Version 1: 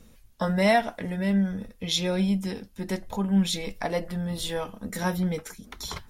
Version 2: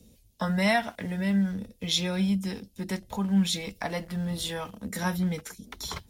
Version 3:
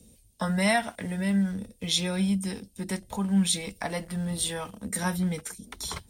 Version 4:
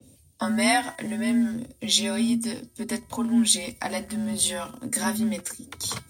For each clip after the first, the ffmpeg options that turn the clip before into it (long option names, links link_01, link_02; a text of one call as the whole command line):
ffmpeg -i in.wav -filter_complex "[0:a]highpass=46,acrossover=split=280|710|2600[link_01][link_02][link_03][link_04];[link_02]acompressor=threshold=-42dB:ratio=6[link_05];[link_03]aeval=exprs='val(0)*gte(abs(val(0)),0.00251)':channel_layout=same[link_06];[link_01][link_05][link_06][link_04]amix=inputs=4:normalize=0" out.wav
ffmpeg -i in.wav -af "equalizer=frequency=8800:width=5.4:gain=15" out.wav
ffmpeg -i in.wav -af "bandreject=frequency=314.5:width_type=h:width=4,bandreject=frequency=629:width_type=h:width=4,bandreject=frequency=943.5:width_type=h:width=4,bandreject=frequency=1258:width_type=h:width=4,bandreject=frequency=1572.5:width_type=h:width=4,bandreject=frequency=1887:width_type=h:width=4,bandreject=frequency=2201.5:width_type=h:width=4,afreqshift=40,adynamicequalizer=threshold=0.00891:dfrequency=3700:dqfactor=0.7:tfrequency=3700:tqfactor=0.7:attack=5:release=100:ratio=0.375:range=2.5:mode=boostabove:tftype=highshelf,volume=2dB" out.wav